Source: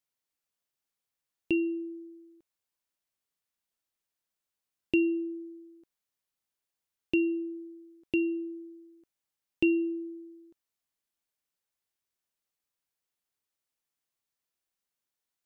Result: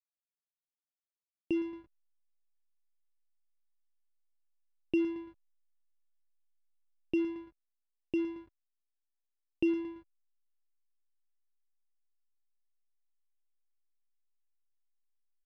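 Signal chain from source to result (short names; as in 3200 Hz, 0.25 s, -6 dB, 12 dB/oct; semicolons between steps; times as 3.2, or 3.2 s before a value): on a send: feedback echo 0.112 s, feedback 39%, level -14 dB; on the sum: hum 50 Hz, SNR 29 dB; backlash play -30 dBFS; Bessel low-pass 2400 Hz, order 2; gain -3.5 dB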